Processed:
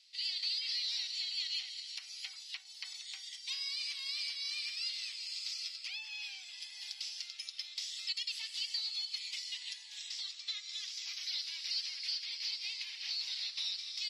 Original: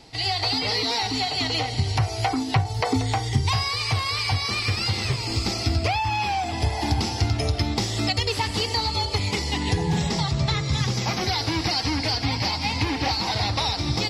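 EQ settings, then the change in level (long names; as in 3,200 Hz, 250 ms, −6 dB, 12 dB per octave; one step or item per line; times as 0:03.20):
four-pole ladder high-pass 2,500 Hz, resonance 25%
high-shelf EQ 10,000 Hz −10.5 dB
−4.5 dB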